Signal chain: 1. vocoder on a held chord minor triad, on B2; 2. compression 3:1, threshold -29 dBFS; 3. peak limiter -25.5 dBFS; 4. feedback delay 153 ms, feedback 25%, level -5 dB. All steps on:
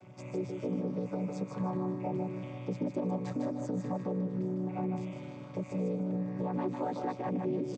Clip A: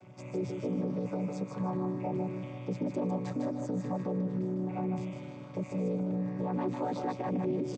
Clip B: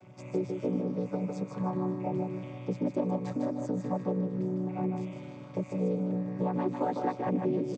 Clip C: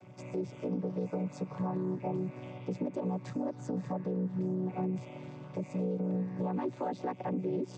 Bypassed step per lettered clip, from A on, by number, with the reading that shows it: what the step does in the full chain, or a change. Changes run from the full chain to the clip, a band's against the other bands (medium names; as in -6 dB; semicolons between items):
2, mean gain reduction 4.0 dB; 3, momentary loudness spread change +1 LU; 4, momentary loudness spread change +1 LU